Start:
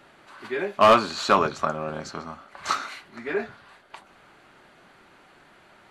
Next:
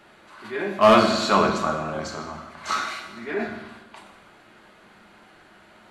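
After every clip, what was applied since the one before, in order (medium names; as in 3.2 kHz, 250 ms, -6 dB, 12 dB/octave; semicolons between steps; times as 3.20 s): transient shaper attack -4 dB, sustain +4 dB; on a send at -2 dB: reverberation RT60 1.1 s, pre-delay 5 ms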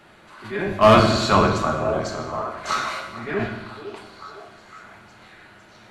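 octave divider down 1 oct, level -1 dB; repeats whose band climbs or falls 505 ms, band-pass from 400 Hz, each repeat 0.7 oct, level -8.5 dB; trim +1.5 dB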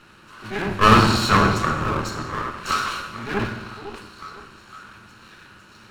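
comb filter that takes the minimum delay 0.73 ms; trim +2 dB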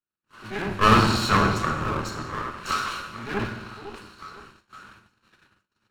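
gate -44 dBFS, range -45 dB; trim -3.5 dB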